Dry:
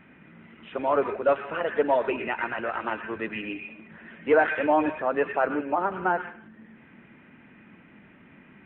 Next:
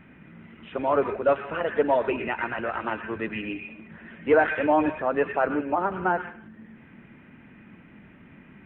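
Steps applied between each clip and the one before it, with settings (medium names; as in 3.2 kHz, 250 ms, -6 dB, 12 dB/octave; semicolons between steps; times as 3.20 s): bass shelf 150 Hz +9.5 dB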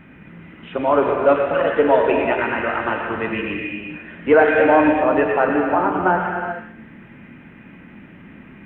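gated-style reverb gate 440 ms flat, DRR 1.5 dB; trim +5.5 dB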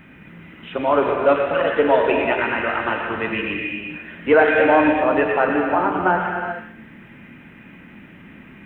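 treble shelf 3.2 kHz +10.5 dB; trim -1.5 dB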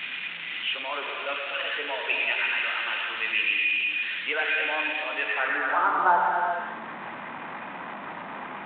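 jump at every zero crossing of -20 dBFS; band-pass sweep 2.8 kHz -> 950 Hz, 5.17–6.20 s; µ-law 64 kbps 8 kHz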